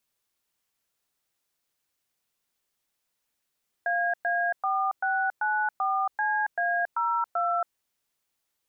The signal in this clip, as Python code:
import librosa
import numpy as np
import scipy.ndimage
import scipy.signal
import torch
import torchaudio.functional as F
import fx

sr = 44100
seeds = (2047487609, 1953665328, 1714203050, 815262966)

y = fx.dtmf(sr, digits='AA4694CA02', tone_ms=277, gap_ms=111, level_db=-26.0)